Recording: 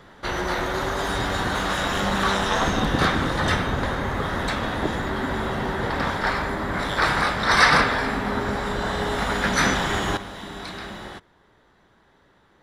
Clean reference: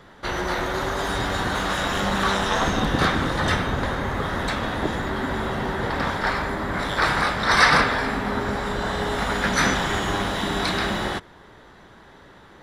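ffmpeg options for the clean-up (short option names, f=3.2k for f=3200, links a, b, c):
-af "asetnsamples=n=441:p=0,asendcmd='10.17 volume volume 11dB',volume=0dB"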